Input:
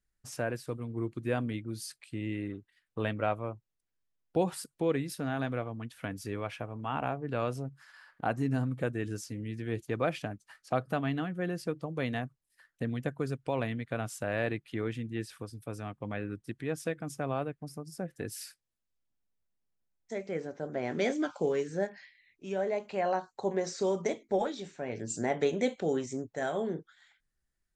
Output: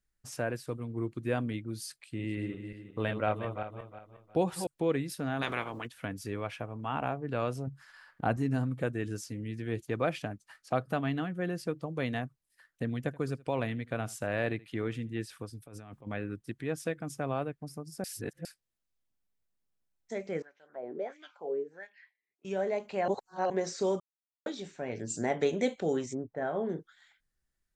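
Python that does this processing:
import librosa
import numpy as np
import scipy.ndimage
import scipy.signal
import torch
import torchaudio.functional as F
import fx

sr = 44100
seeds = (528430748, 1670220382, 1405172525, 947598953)

y = fx.reverse_delay_fb(x, sr, ms=180, feedback_pct=52, wet_db=-7, at=(2.01, 4.67))
y = fx.spec_clip(y, sr, under_db=23, at=(5.41, 5.86), fade=0.02)
y = fx.low_shelf(y, sr, hz=230.0, db=8.0, at=(7.67, 8.37))
y = fx.echo_single(y, sr, ms=78, db=-22.0, at=(12.96, 15.14))
y = fx.over_compress(y, sr, threshold_db=-48.0, ratio=-1.0, at=(15.66, 16.07))
y = fx.wah_lfo(y, sr, hz=1.5, low_hz=360.0, high_hz=2900.0, q=3.5, at=(20.42, 22.45))
y = fx.lowpass(y, sr, hz=fx.line((26.13, 1100.0), (26.68, 2200.0)), slope=12, at=(26.13, 26.68), fade=0.02)
y = fx.edit(y, sr, fx.reverse_span(start_s=18.04, length_s=0.41),
    fx.reverse_span(start_s=23.08, length_s=0.42),
    fx.silence(start_s=24.0, length_s=0.46), tone=tone)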